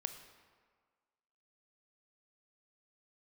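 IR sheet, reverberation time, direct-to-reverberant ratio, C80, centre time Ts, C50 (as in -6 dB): 1.7 s, 8.0 dB, 10.5 dB, 19 ms, 9.5 dB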